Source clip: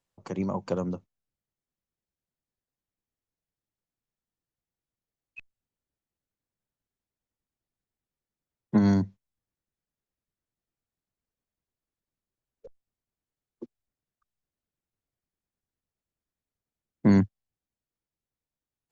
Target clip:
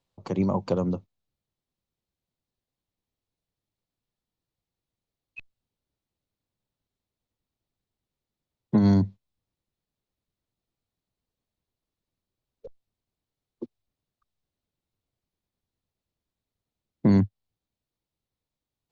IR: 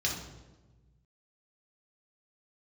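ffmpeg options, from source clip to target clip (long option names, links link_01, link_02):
-af "highshelf=frequency=3700:gain=-9.5,alimiter=limit=-17dB:level=0:latency=1:release=264,equalizer=frequency=100:width_type=o:width=0.67:gain=3,equalizer=frequency=1600:width_type=o:width=0.67:gain=-5,equalizer=frequency=4000:width_type=o:width=0.67:gain=7,volume=5dB"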